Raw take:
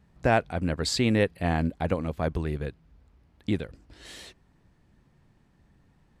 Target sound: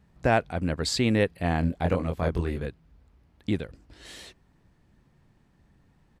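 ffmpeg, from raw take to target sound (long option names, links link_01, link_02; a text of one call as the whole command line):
ffmpeg -i in.wav -filter_complex "[0:a]asplit=3[link_01][link_02][link_03];[link_01]afade=type=out:start_time=1.62:duration=0.02[link_04];[link_02]asplit=2[link_05][link_06];[link_06]adelay=23,volume=-3dB[link_07];[link_05][link_07]amix=inputs=2:normalize=0,afade=type=in:start_time=1.62:duration=0.02,afade=type=out:start_time=2.65:duration=0.02[link_08];[link_03]afade=type=in:start_time=2.65:duration=0.02[link_09];[link_04][link_08][link_09]amix=inputs=3:normalize=0" out.wav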